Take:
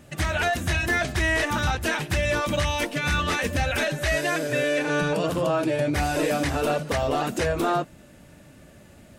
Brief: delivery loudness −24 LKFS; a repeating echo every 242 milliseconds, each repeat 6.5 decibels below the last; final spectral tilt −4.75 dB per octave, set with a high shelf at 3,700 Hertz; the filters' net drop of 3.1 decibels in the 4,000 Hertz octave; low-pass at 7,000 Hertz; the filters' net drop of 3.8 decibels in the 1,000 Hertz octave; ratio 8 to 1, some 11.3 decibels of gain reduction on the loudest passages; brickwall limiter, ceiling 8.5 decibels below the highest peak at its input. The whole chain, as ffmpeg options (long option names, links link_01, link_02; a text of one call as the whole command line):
ffmpeg -i in.wav -af "lowpass=7000,equalizer=frequency=1000:width_type=o:gain=-6,highshelf=frequency=3700:gain=8,equalizer=frequency=4000:width_type=o:gain=-8.5,acompressor=threshold=-33dB:ratio=8,alimiter=level_in=7dB:limit=-24dB:level=0:latency=1,volume=-7dB,aecho=1:1:242|484|726|968|1210|1452:0.473|0.222|0.105|0.0491|0.0231|0.0109,volume=14dB" out.wav